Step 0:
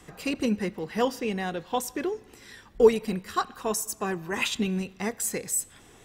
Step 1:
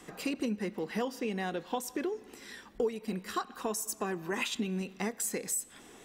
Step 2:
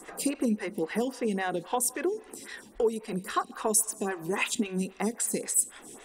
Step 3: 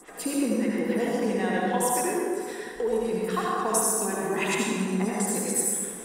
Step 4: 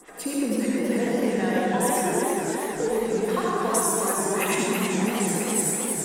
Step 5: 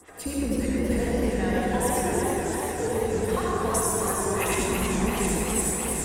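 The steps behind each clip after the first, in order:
resonant low shelf 160 Hz -8.5 dB, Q 1.5; compression 4:1, threshold -31 dBFS, peak gain reduction 17 dB
peaking EQ 9.3 kHz +13 dB 0.51 oct; lamp-driven phase shifter 3.7 Hz; trim +6.5 dB
reverberation RT60 2.4 s, pre-delay 63 ms, DRR -5.5 dB; trim -2.5 dB
modulated delay 324 ms, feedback 65%, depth 147 cents, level -4 dB
octave divider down 2 oct, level -3 dB; two-band feedback delay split 430 Hz, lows 89 ms, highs 713 ms, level -8 dB; trim -2.5 dB

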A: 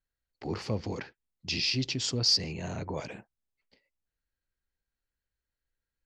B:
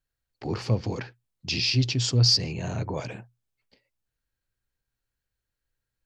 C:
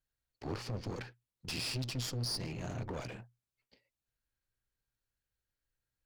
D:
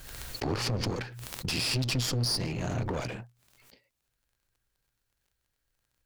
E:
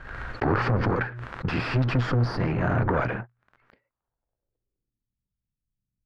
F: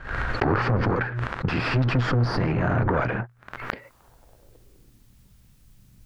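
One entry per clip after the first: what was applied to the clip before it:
peaking EQ 120 Hz +12 dB 0.21 oct; band-stop 2 kHz, Q 20; trim +3.5 dB
peak limiter -19.5 dBFS, peak gain reduction 9.5 dB; one-sided clip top -42.5 dBFS, bottom -22.5 dBFS; trim -5 dB
crackle 21 per s -65 dBFS; swell ahead of each attack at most 38 dB/s; trim +7.5 dB
waveshaping leveller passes 2; low-pass sweep 1.5 kHz -> 190 Hz, 3.78–5.18 s
recorder AGC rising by 57 dB/s; trim +1 dB

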